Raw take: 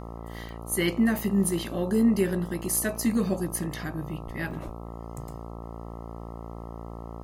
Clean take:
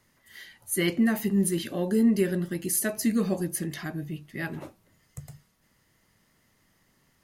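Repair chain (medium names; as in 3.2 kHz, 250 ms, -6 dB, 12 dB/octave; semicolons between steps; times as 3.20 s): de-hum 57.1 Hz, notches 23; 4.25–4.37 s: high-pass 140 Hz 24 dB/octave; 4.65–4.77 s: high-pass 140 Hz 24 dB/octave; interpolate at 0.49/2.33/4.51 s, 1.8 ms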